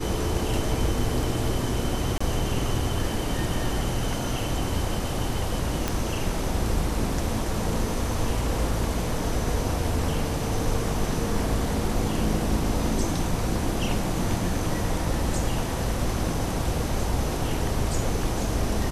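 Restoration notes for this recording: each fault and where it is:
2.18–2.21 s: dropout 25 ms
5.88 s: pop

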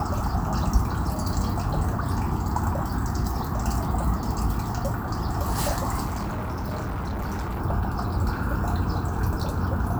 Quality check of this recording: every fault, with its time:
6.05–7.61 s: clipped -26 dBFS

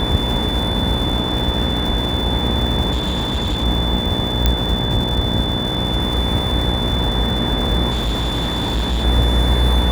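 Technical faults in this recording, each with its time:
buzz 60 Hz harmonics 16 -23 dBFS
crackle 320 per s -25 dBFS
whine 3.5 kHz -23 dBFS
2.92–3.64 s: clipped -16 dBFS
4.46 s: pop -1 dBFS
7.90–9.05 s: clipped -16 dBFS

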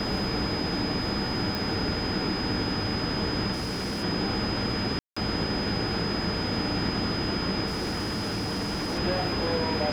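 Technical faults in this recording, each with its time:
whine 5 kHz -33 dBFS
1.55 s: pop
3.52–4.04 s: clipped -27.5 dBFS
4.99–5.17 s: dropout 175 ms
7.66–8.99 s: clipped -26.5 dBFS

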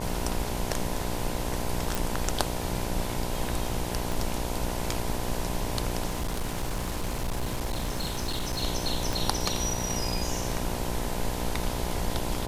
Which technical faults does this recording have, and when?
buzz 60 Hz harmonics 17 -34 dBFS
1.95 s: pop
4.12 s: pop
6.06–8.63 s: clipped -25.5 dBFS
9.13 s: pop

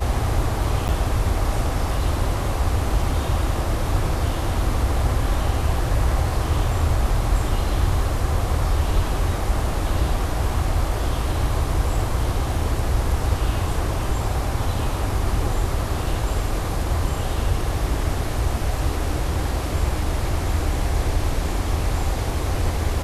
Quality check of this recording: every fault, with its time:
0.88–0.89 s: dropout 9.6 ms

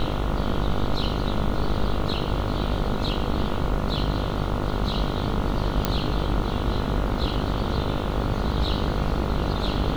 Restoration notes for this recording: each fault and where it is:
buzz 50 Hz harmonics 29 -29 dBFS
5.85 s: pop -6 dBFS

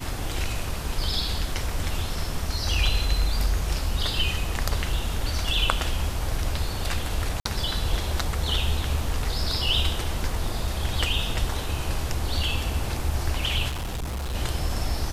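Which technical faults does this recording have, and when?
7.40–7.45 s: dropout 54 ms
13.68–14.35 s: clipped -27 dBFS

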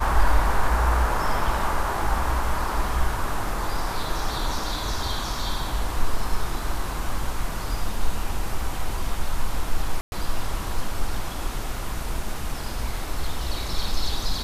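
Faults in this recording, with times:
10.01–10.12 s: dropout 111 ms

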